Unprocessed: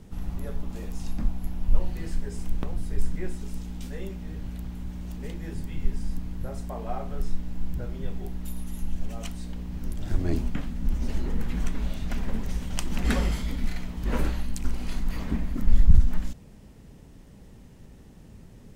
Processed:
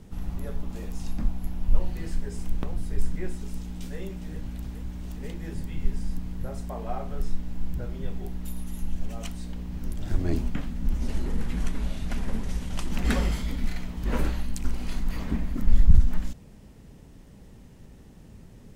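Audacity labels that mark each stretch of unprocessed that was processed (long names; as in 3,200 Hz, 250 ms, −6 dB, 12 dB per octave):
3.340000	3.990000	delay throw 410 ms, feedback 80%, level −11 dB
10.980000	12.920000	variable-slope delta modulation 64 kbit/s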